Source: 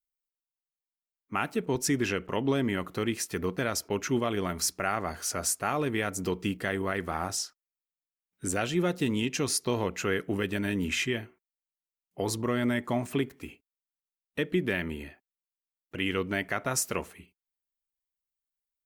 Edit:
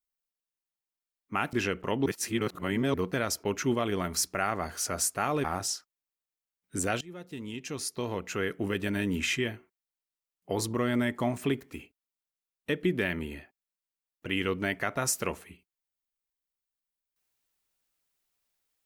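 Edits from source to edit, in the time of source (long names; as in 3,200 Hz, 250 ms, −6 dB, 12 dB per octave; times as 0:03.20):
0:01.53–0:01.98: remove
0:02.51–0:03.39: reverse
0:05.89–0:07.13: remove
0:08.70–0:10.61: fade in, from −22 dB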